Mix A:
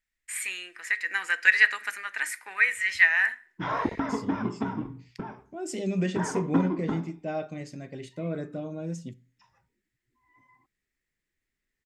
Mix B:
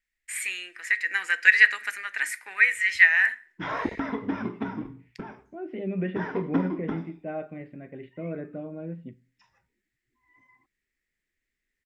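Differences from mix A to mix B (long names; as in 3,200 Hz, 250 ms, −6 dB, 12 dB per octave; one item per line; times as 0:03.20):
second voice: add Bessel low-pass filter 1,600 Hz, order 8
master: add octave-band graphic EQ 125/1,000/2,000 Hz −5/−4/+4 dB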